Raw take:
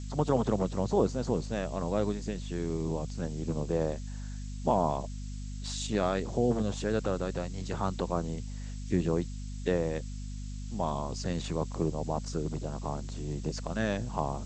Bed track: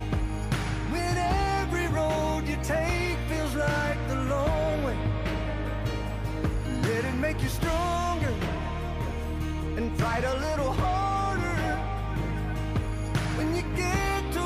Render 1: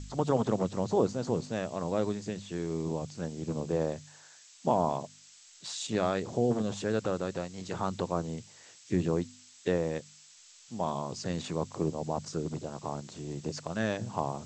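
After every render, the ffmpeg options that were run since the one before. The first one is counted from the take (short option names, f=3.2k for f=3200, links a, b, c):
-af "bandreject=f=50:t=h:w=4,bandreject=f=100:t=h:w=4,bandreject=f=150:t=h:w=4,bandreject=f=200:t=h:w=4,bandreject=f=250:t=h:w=4"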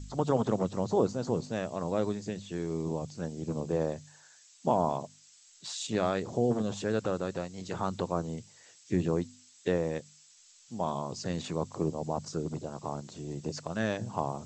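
-af "afftdn=nr=6:nf=-56"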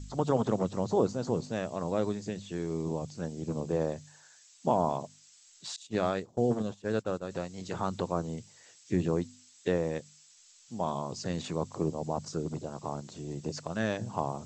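-filter_complex "[0:a]asettb=1/sr,asplit=3[a][b][c];[a]atrim=end=5.764[d];[b]atrim=start=5.76:end=7.31,asetpts=PTS-STARTPTS,afade=t=in:d=0.004:c=qsin,afade=t=out:st=1.546:d=0.004:c=qsin,agate=range=-33dB:threshold=-29dB:ratio=3:release=100:detection=peak[e];[c]atrim=start=7.306[f];[d][e]acrossfade=d=0.004:c1=hsin:c2=qsin[g];[g][f]acrossfade=d=0.004:c1=qsin:c2=hsin"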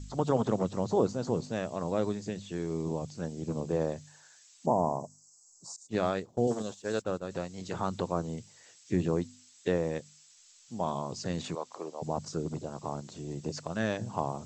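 -filter_complex "[0:a]asettb=1/sr,asplit=3[a][b][c];[a]atrim=end=4.664[d];[b]atrim=start=4.66:end=5.89,asetpts=PTS-STARTPTS,afade=t=in:d=0.004:c=qsin,afade=t=out:st=1.226:d=0.004:c=qsin,asuperstop=centerf=2500:order=8:qfactor=0.57[e];[c]atrim=start=5.886[f];[d][e]acrossfade=d=0.004:c1=hsin:c2=qsin[g];[g][f]acrossfade=d=0.004:c1=qsin:c2=hsin,asettb=1/sr,asplit=3[h][i][j];[h]atrim=end=6.474[k];[i]atrim=start=6.47:end=7.02,asetpts=PTS-STARTPTS,afade=t=in:d=0.004:c=qsin,afade=t=out:st=0.546:d=0.004:c=qsin,bass=f=250:g=-7,treble=f=4k:g=10[l];[j]atrim=start=7.016[m];[k][l]acrossfade=d=0.004:c1=hsin:c2=qsin[n];[n][m]acrossfade=d=0.004:c1=qsin:c2=hsin,asettb=1/sr,asplit=3[o][p][q];[o]atrim=end=11.554[r];[p]atrim=start=11.55:end=12.02,asetpts=PTS-STARTPTS,afade=t=in:d=0.004:c=qsin,afade=t=out:st=0.466:d=0.004:c=qsin,highpass=580,lowpass=6.8k[s];[q]atrim=start=12.016[t];[r][s]acrossfade=d=0.004:c1=hsin:c2=qsin[u];[u][t]acrossfade=d=0.004:c1=qsin:c2=hsin"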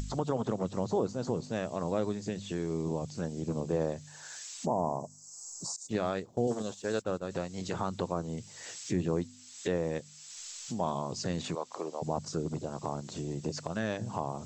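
-af "acompressor=mode=upward:threshold=-30dB:ratio=2.5,alimiter=limit=-19dB:level=0:latency=1:release=251"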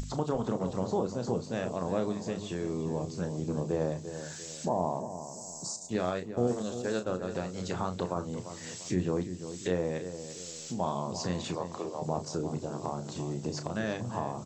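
-filter_complex "[0:a]asplit=2[a][b];[b]adelay=33,volume=-9dB[c];[a][c]amix=inputs=2:normalize=0,asplit=2[d][e];[e]adelay=345,lowpass=f=1.6k:p=1,volume=-10dB,asplit=2[f][g];[g]adelay=345,lowpass=f=1.6k:p=1,volume=0.4,asplit=2[h][i];[i]adelay=345,lowpass=f=1.6k:p=1,volume=0.4,asplit=2[j][k];[k]adelay=345,lowpass=f=1.6k:p=1,volume=0.4[l];[d][f][h][j][l]amix=inputs=5:normalize=0"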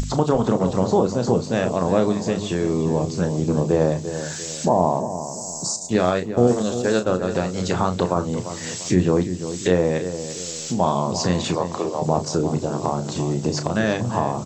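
-af "volume=12dB"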